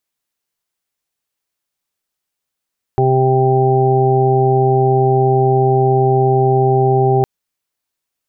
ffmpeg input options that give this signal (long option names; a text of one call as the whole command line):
ffmpeg -f lavfi -i "aevalsrc='0.2*sin(2*PI*131*t)+0.0398*sin(2*PI*262*t)+0.211*sin(2*PI*393*t)+0.0282*sin(2*PI*524*t)+0.0501*sin(2*PI*655*t)+0.158*sin(2*PI*786*t)':duration=4.26:sample_rate=44100" out.wav